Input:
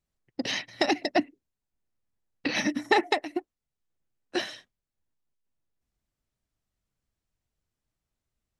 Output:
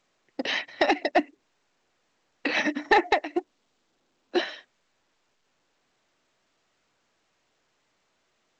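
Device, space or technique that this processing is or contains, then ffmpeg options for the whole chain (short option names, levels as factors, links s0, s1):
telephone: -filter_complex "[0:a]asettb=1/sr,asplit=3[s0][s1][s2];[s0]atrim=end=3.374[s3];[s1]atrim=start=3.37:end=4.41,asetpts=PTS-STARTPTS,afade=t=in:d=0.004:c=qsin,afade=t=out:st=1.036:d=0.004:c=qsin,equalizer=f=250:t=o:w=1:g=8,equalizer=f=2000:t=o:w=1:g=-6,equalizer=f=4000:t=o:w=1:g=4,equalizer=f=8000:t=o:w=1:g=-3[s4];[s2]atrim=start=4.406[s5];[s3][s4]acrossfade=d=0.004:c1=hsin:c2=qsin[s6];[s6][s5]acrossfade=d=0.004:c1=qsin:c2=hsin,highpass=380,lowpass=3100,asoftclip=type=tanh:threshold=0.178,volume=1.88" -ar 16000 -c:a pcm_alaw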